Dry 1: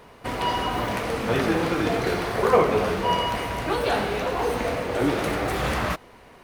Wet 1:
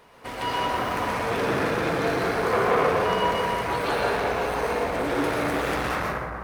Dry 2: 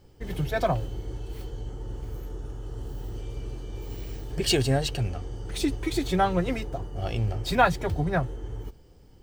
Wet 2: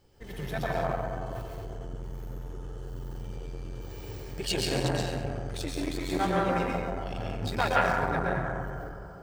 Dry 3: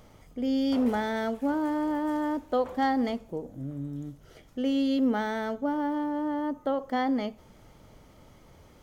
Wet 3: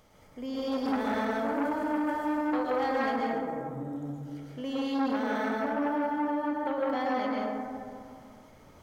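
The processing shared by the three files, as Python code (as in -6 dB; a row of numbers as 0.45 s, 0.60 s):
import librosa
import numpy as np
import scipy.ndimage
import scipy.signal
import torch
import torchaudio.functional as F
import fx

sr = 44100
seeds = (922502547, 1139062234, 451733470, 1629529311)

y = fx.low_shelf(x, sr, hz=420.0, db=-6.5)
y = fx.rev_plate(y, sr, seeds[0], rt60_s=2.3, hf_ratio=0.3, predelay_ms=105, drr_db=-5.5)
y = fx.transformer_sat(y, sr, knee_hz=870.0)
y = y * librosa.db_to_amplitude(-3.5)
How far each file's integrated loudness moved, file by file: -0.5 LU, -2.5 LU, -2.0 LU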